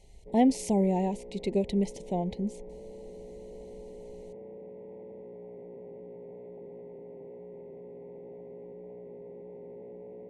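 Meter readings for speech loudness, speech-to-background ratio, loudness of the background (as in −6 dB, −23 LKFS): −29.0 LKFS, 17.0 dB, −46.0 LKFS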